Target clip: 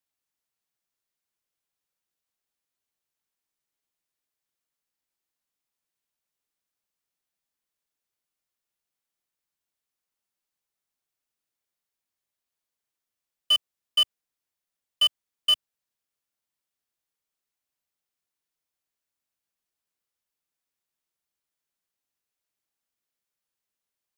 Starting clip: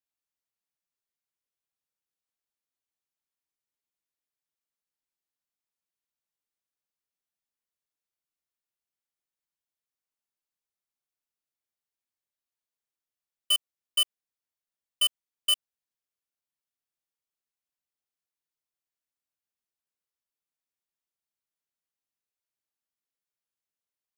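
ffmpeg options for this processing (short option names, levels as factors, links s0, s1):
-filter_complex "[0:a]acrossover=split=120|990|6600[s0][s1][s2][s3];[s3]aeval=exprs='0.0106*(abs(mod(val(0)/0.0106+3,4)-2)-1)':c=same[s4];[s0][s1][s2][s4]amix=inputs=4:normalize=0,volume=1.68"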